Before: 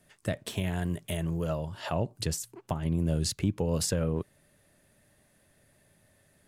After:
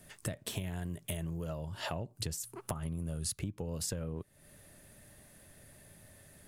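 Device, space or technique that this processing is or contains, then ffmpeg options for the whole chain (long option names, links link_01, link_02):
ASMR close-microphone chain: -filter_complex "[0:a]asettb=1/sr,asplit=3[link_01][link_02][link_03];[link_01]atrim=end=2.454[link_04];[link_02]atrim=start=2.45:end=3.38,asetpts=PTS-STARTPTS,afade=type=in:duration=0.004:curve=qsin,afade=type=out:start_time=0.926:duration=0.004:curve=qsin,equalizer=frequency=315:width_type=o:width=0.33:gain=-6,equalizer=frequency=1250:width_type=o:width=0.33:gain=9,equalizer=frequency=10000:width_type=o:width=0.33:gain=11[link_05];[link_03]atrim=start=3.376[link_06];[link_04][link_05]acrossfade=duration=0.004:curve1=hsin:curve2=qsin[link_07];[link_07][link_06]acrossfade=duration=0.004:curve1=qsin:curve2=hsin,lowshelf=frequency=110:gain=5.5,acompressor=threshold=-41dB:ratio=6,highshelf=frequency=8100:gain=7,volume=5dB"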